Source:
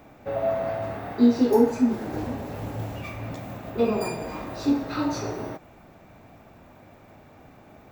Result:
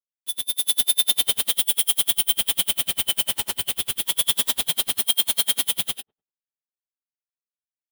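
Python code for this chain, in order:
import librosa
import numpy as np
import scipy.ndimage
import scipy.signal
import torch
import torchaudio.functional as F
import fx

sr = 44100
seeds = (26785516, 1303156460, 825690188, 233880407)

p1 = fx.band_shuffle(x, sr, order='2413')
p2 = fx.spec_gate(p1, sr, threshold_db=-15, keep='strong')
p3 = fx.high_shelf(p2, sr, hz=5000.0, db=9.0, at=(1.08, 1.75))
p4 = fx.over_compress(p3, sr, threshold_db=-28.0, ratio=-0.5)
p5 = p3 + (p4 * 10.0 ** (0.5 / 20.0))
p6 = fx.schmitt(p5, sr, flips_db=-22.0)
p7 = fx.riaa(p6, sr, side='recording')
p8 = p7 + fx.echo_wet_lowpass(p7, sr, ms=63, feedback_pct=34, hz=850.0, wet_db=-23.5, dry=0)
p9 = fx.rev_gated(p8, sr, seeds[0], gate_ms=470, shape='rising', drr_db=-7.5)
p10 = p9 * 10.0 ** (-39 * (0.5 - 0.5 * np.cos(2.0 * np.pi * 10.0 * np.arange(len(p9)) / sr)) / 20.0)
y = p10 * 10.0 ** (-9.0 / 20.0)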